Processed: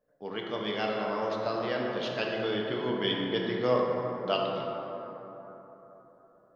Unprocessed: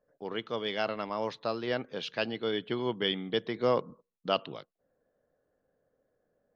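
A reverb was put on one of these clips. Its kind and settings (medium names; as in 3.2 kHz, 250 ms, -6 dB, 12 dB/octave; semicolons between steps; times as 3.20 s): plate-style reverb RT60 3.9 s, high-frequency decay 0.35×, DRR -2 dB; trim -2 dB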